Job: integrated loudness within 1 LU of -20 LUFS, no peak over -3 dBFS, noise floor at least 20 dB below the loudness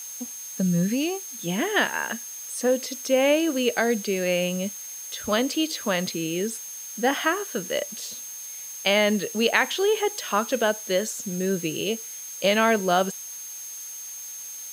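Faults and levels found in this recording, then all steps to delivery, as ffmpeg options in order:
steady tone 6.4 kHz; tone level -36 dBFS; noise floor -38 dBFS; noise floor target -46 dBFS; loudness -25.5 LUFS; peak level -4.5 dBFS; loudness target -20.0 LUFS
-> -af "bandreject=f=6400:w=30"
-af "afftdn=nr=8:nf=-38"
-af "volume=1.88,alimiter=limit=0.708:level=0:latency=1"

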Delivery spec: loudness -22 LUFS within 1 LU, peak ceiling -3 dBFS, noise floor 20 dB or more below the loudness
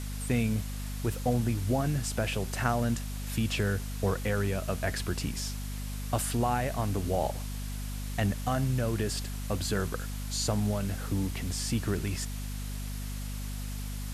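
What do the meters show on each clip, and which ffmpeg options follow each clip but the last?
hum 50 Hz; highest harmonic 250 Hz; hum level -34 dBFS; noise floor -36 dBFS; noise floor target -52 dBFS; loudness -31.5 LUFS; peak level -12.5 dBFS; loudness target -22.0 LUFS
-> -af "bandreject=f=50:t=h:w=6,bandreject=f=100:t=h:w=6,bandreject=f=150:t=h:w=6,bandreject=f=200:t=h:w=6,bandreject=f=250:t=h:w=6"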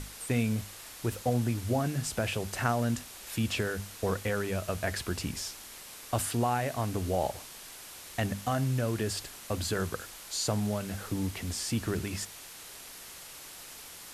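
hum not found; noise floor -47 dBFS; noise floor target -53 dBFS
-> -af "afftdn=nr=6:nf=-47"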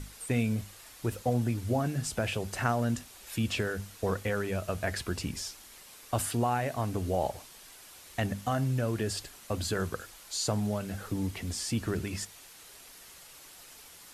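noise floor -52 dBFS; noise floor target -53 dBFS
-> -af "afftdn=nr=6:nf=-52"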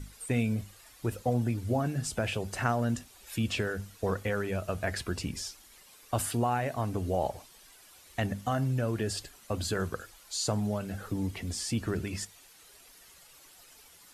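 noise floor -56 dBFS; loudness -32.5 LUFS; peak level -12.5 dBFS; loudness target -22.0 LUFS
-> -af "volume=3.35,alimiter=limit=0.708:level=0:latency=1"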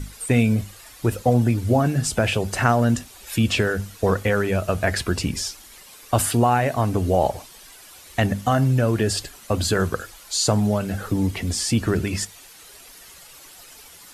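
loudness -22.0 LUFS; peak level -3.0 dBFS; noise floor -46 dBFS

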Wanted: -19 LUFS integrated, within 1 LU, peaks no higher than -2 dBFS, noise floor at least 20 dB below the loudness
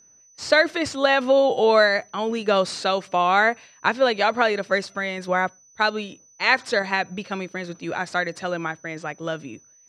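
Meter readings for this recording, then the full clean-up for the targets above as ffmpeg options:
steady tone 6 kHz; tone level -52 dBFS; loudness -22.0 LUFS; peak level -3.0 dBFS; loudness target -19.0 LUFS
-> -af "bandreject=f=6000:w=30"
-af "volume=1.41,alimiter=limit=0.794:level=0:latency=1"

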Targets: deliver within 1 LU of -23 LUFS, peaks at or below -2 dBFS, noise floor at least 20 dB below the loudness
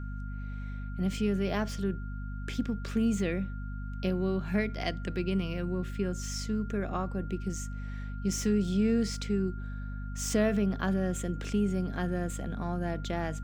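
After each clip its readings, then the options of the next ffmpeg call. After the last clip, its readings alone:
hum 50 Hz; highest harmonic 250 Hz; hum level -35 dBFS; steady tone 1.4 kHz; tone level -49 dBFS; loudness -32.0 LUFS; peak level -14.0 dBFS; loudness target -23.0 LUFS
-> -af "bandreject=f=50:t=h:w=4,bandreject=f=100:t=h:w=4,bandreject=f=150:t=h:w=4,bandreject=f=200:t=h:w=4,bandreject=f=250:t=h:w=4"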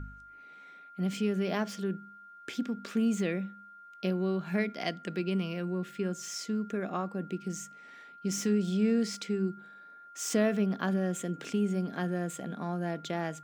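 hum not found; steady tone 1.4 kHz; tone level -49 dBFS
-> -af "bandreject=f=1400:w=30"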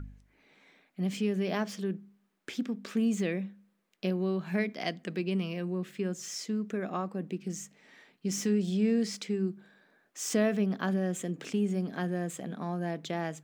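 steady tone not found; loudness -32.5 LUFS; peak level -14.5 dBFS; loudness target -23.0 LUFS
-> -af "volume=2.99"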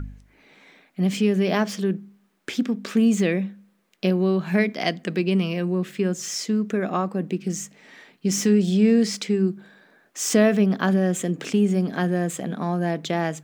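loudness -23.0 LUFS; peak level -5.0 dBFS; noise floor -63 dBFS

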